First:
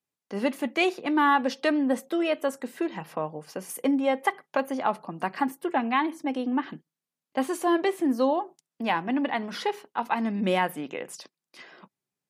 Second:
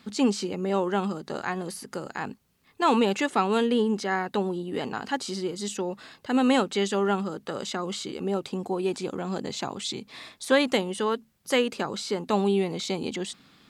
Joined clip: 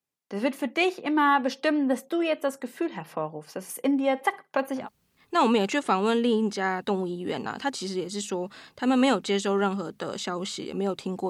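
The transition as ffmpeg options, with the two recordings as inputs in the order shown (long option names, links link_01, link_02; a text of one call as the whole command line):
ffmpeg -i cue0.wav -i cue1.wav -filter_complex "[0:a]asplit=3[link_01][link_02][link_03];[link_01]afade=type=out:start_time=3.93:duration=0.02[link_04];[link_02]aecho=1:1:63|126:0.0794|0.0199,afade=type=in:start_time=3.93:duration=0.02,afade=type=out:start_time=4.89:duration=0.02[link_05];[link_03]afade=type=in:start_time=4.89:duration=0.02[link_06];[link_04][link_05][link_06]amix=inputs=3:normalize=0,apad=whole_dur=11.29,atrim=end=11.29,atrim=end=4.89,asetpts=PTS-STARTPTS[link_07];[1:a]atrim=start=2.22:end=8.76,asetpts=PTS-STARTPTS[link_08];[link_07][link_08]acrossfade=duration=0.14:curve1=tri:curve2=tri" out.wav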